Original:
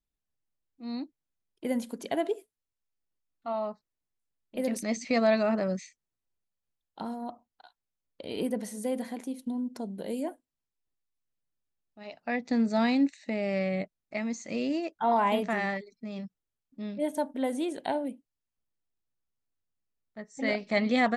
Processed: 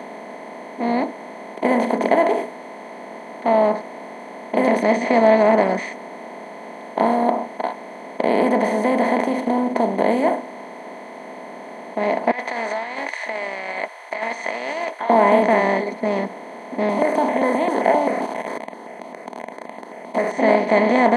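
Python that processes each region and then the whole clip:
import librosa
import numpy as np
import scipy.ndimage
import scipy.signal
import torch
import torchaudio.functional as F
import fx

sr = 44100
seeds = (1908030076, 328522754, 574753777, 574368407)

y = fx.chain(x, sr, fx.highpass(hz=1400.0, slope=24),
    fx.over_compress(threshold_db=-50.0, ratio=-1.0), at=(12.31, 15.1))
y = fx.chain(y, sr, fx.zero_step(step_db=-43.5),
    fx.phaser_held(hz=7.6, low_hz=450.0, high_hz=1500.0), at=(16.89, 20.32))
y = fx.bin_compress(y, sr, power=0.2)
y = scipy.signal.sosfilt(scipy.signal.butter(2, 150.0, 'highpass', fs=sr, output='sos'), y)
y = fx.spectral_expand(y, sr, expansion=1.5)
y = F.gain(torch.from_numpy(y), 1.0).numpy()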